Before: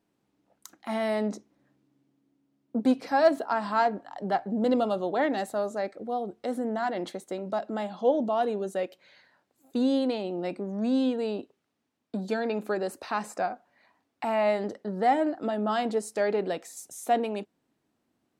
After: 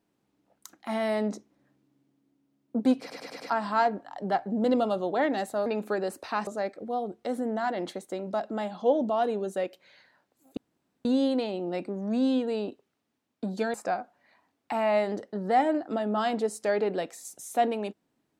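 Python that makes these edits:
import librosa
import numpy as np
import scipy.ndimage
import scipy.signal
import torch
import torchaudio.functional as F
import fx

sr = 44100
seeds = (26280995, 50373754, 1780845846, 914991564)

y = fx.edit(x, sr, fx.stutter_over(start_s=3.0, slice_s=0.1, count=5),
    fx.insert_room_tone(at_s=9.76, length_s=0.48),
    fx.move(start_s=12.45, length_s=0.81, to_s=5.66), tone=tone)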